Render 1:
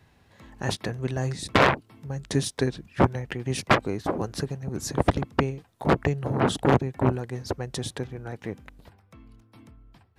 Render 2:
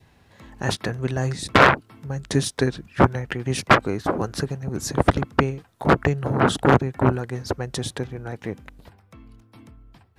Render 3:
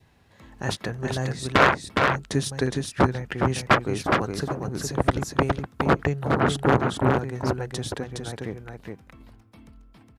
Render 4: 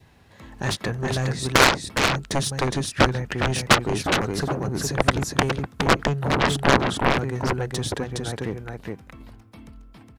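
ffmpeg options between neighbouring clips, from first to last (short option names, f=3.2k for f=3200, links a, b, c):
-af "adynamicequalizer=threshold=0.00794:dfrequency=1400:dqfactor=2.5:tfrequency=1400:tqfactor=2.5:attack=5:release=100:ratio=0.375:range=3:mode=boostabove:tftype=bell,volume=3.5dB"
-af "aecho=1:1:414:0.631,volume=-3.5dB"
-af "aeval=exprs='0.596*(cos(1*acos(clip(val(0)/0.596,-1,1)))-cos(1*PI/2))+0.237*(cos(7*acos(clip(val(0)/0.596,-1,1)))-cos(7*PI/2))':c=same"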